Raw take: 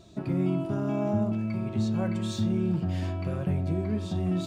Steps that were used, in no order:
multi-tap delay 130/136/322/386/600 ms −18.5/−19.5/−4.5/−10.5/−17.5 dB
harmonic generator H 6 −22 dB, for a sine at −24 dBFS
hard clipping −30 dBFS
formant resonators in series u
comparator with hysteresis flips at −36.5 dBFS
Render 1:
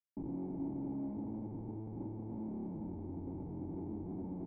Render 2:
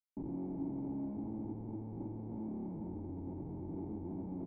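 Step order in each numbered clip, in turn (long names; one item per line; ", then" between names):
harmonic generator, then hard clipping, then multi-tap delay, then comparator with hysteresis, then formant resonators in series
hard clipping, then multi-tap delay, then harmonic generator, then comparator with hysteresis, then formant resonators in series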